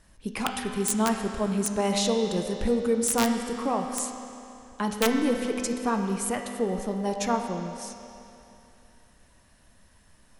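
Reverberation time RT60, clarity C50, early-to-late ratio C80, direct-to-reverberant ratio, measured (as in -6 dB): 2.9 s, 4.5 dB, 5.5 dB, 3.0 dB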